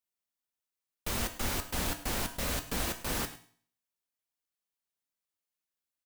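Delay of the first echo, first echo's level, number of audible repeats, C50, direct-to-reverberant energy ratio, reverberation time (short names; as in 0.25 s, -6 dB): 0.105 s, -18.0 dB, 1, 12.0 dB, 6.5 dB, 0.50 s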